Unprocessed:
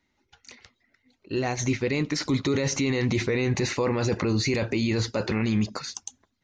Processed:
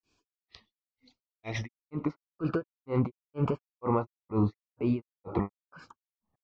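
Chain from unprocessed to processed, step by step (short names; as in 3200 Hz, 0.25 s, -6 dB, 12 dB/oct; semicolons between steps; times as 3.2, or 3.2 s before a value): Butterworth band-stop 1700 Hz, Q 3.1; low-pass sweep 5000 Hz -> 1100 Hz, 1.27–2.06; grains 0.262 s, grains 2.1/s, pitch spread up and down by 3 st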